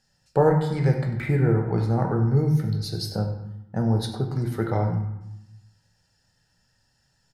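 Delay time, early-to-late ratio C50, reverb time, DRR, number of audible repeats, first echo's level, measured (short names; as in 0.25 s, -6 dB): 96 ms, 6.0 dB, 0.90 s, 2.5 dB, 1, -13.0 dB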